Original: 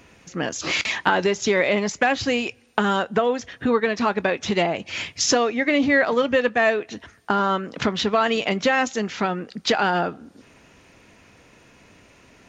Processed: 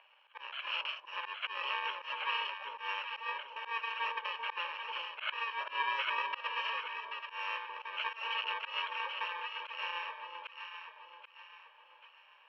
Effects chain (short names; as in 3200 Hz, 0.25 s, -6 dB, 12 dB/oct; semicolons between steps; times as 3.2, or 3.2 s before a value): FFT order left unsorted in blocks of 64 samples; Chebyshev band-pass 610–3100 Hz, order 4; echo with dull and thin repeats by turns 0.392 s, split 950 Hz, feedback 62%, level -3 dB; auto swell 0.129 s; gain -2 dB